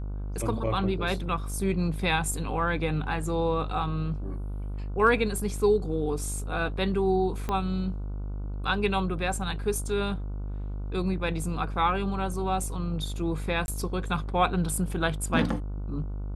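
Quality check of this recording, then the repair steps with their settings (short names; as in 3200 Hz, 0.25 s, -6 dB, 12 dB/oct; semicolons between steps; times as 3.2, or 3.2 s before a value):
buzz 50 Hz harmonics 30 -33 dBFS
7.49 pop -17 dBFS
13.66–13.68 gap 21 ms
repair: de-click; de-hum 50 Hz, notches 30; interpolate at 13.66, 21 ms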